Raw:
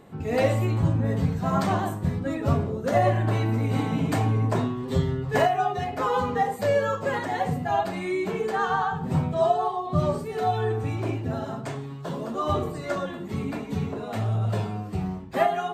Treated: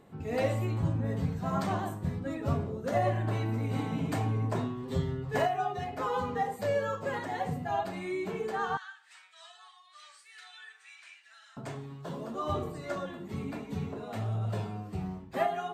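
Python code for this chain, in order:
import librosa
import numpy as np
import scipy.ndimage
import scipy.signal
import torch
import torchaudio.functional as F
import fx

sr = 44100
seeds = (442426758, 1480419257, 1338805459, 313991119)

y = fx.cheby1_bandpass(x, sr, low_hz=1700.0, high_hz=9900.0, order=3, at=(8.77, 11.57))
y = F.gain(torch.from_numpy(y), -7.0).numpy()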